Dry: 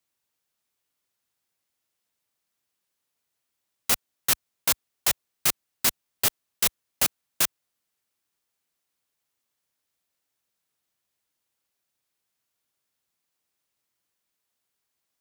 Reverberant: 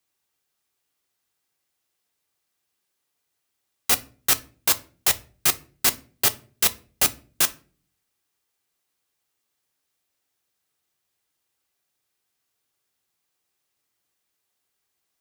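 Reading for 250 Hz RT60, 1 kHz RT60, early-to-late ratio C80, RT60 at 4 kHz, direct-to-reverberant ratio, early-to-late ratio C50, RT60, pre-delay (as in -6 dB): 0.65 s, 0.35 s, 25.5 dB, 0.25 s, 9.0 dB, 20.5 dB, 0.40 s, 3 ms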